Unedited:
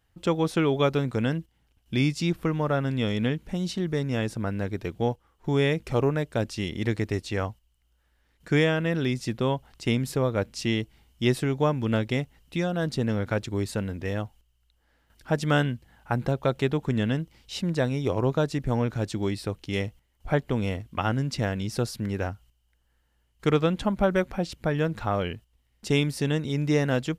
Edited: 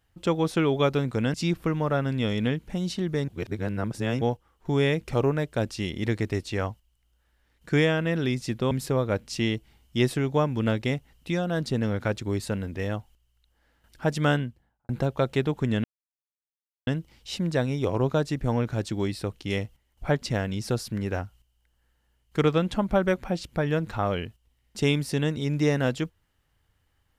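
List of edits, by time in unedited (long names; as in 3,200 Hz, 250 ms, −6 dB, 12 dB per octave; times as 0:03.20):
0:01.34–0:02.13: remove
0:04.07–0:05.00: reverse
0:09.50–0:09.97: remove
0:15.50–0:16.15: fade out and dull
0:17.10: splice in silence 1.03 s
0:20.45–0:21.30: remove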